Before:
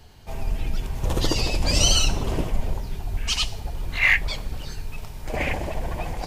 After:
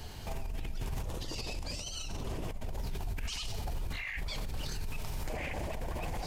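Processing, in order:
high-shelf EQ 6,000 Hz +5 dB
compressor whose output falls as the input rises −30 dBFS, ratio −1
brickwall limiter −27.5 dBFS, peak gain reduction 15.5 dB
highs frequency-modulated by the lows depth 0.18 ms
level −1 dB

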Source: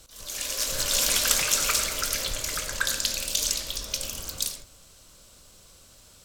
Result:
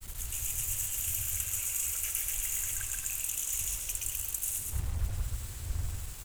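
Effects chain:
wind on the microphone 150 Hz −28 dBFS
drawn EQ curve 100 Hz 0 dB, 180 Hz −24 dB, 620 Hz −24 dB, 2,800 Hz +3 dB, 4,500 Hz −22 dB, 6,800 Hz +8 dB, 14,000 Hz +14 dB
reversed playback
downward compressor 12 to 1, threshold −26 dBFS, peak gain reduction 18.5 dB
reversed playback
bit reduction 7 bits
granular cloud, pitch spread up and down by 0 semitones
on a send: loudspeakers that aren't time-aligned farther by 46 metres −4 dB, 79 metres −10 dB
on the sum: level −2 dB

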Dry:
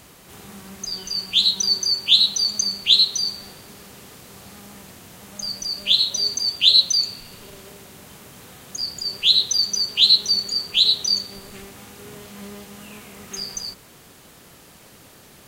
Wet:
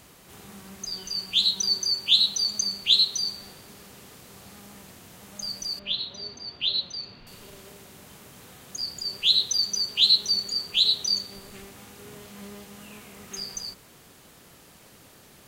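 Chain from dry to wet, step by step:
0:05.79–0:07.27: high-frequency loss of the air 280 metres
level −4.5 dB

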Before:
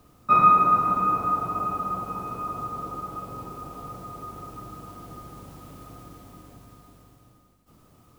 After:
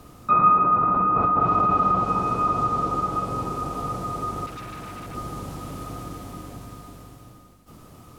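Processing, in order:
treble cut that deepens with the level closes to 1,800 Hz, closed at −20.5 dBFS
in parallel at +2 dB: compressor whose output falls as the input rises −28 dBFS, ratio −0.5
0:04.46–0:05.15: on the sum: hard clipping −34.5 dBFS, distortion −23 dB

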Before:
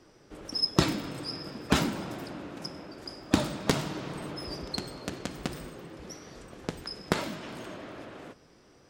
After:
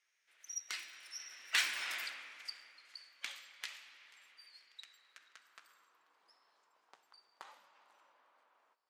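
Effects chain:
source passing by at 0:01.93, 35 m/s, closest 5.4 metres
high-pass filter sweep 2,100 Hz → 930 Hz, 0:04.75–0:06.33
feedback echo with a swinging delay time 487 ms, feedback 35%, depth 123 cents, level −24 dB
level +4.5 dB

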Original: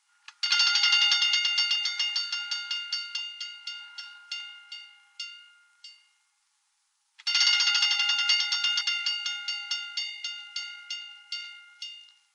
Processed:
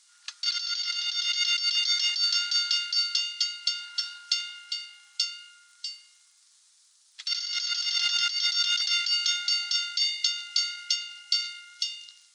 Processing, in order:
surface crackle 16 per second −56 dBFS
high-pass filter 1,100 Hz 24 dB per octave
flat-topped bell 5,800 Hz +10 dB
compressor whose output falls as the input rises −25 dBFS, ratio −1
dynamic equaliser 2,700 Hz, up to −3 dB, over −39 dBFS, Q 5.1
level −1.5 dB

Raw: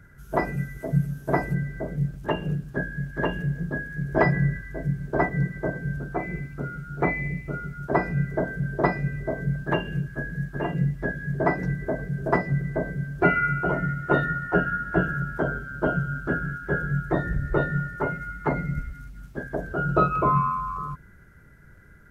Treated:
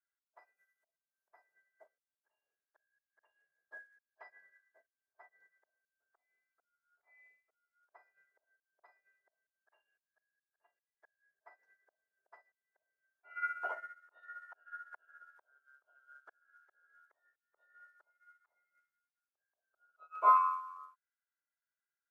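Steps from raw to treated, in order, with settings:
volume swells 331 ms
high-pass filter 680 Hz 24 dB per octave
expander for the loud parts 2.5 to 1, over −47 dBFS

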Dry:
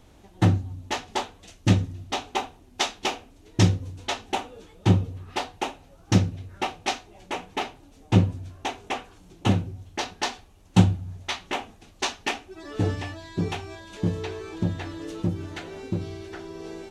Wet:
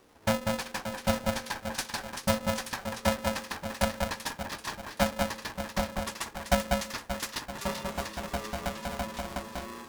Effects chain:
gliding playback speed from 154% → 188%
delay that swaps between a low-pass and a high-pass 193 ms, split 1,300 Hz, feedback 68%, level −3 dB
ring modulator with a square carrier 380 Hz
level −7.5 dB

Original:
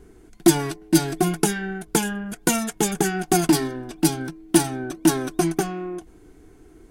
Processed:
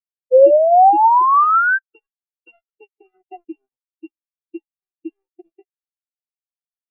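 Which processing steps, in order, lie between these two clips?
samples sorted by size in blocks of 16 samples
three-way crossover with the lows and the highs turned down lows −21 dB, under 370 Hz, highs −17 dB, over 2,900 Hz
downward compressor 10 to 1, threshold −24 dBFS, peak gain reduction 9.5 dB
harmonic generator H 3 −44 dB, 7 −34 dB, 8 −26 dB, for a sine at −10.5 dBFS
sound drawn into the spectrogram rise, 0:00.31–0:01.79, 500–1,600 Hz −27 dBFS
bit reduction 5 bits
on a send at −18 dB: convolution reverb RT60 1.8 s, pre-delay 3 ms
on the sum: every bin expanded away from the loudest bin 4 to 1
level +7.5 dB

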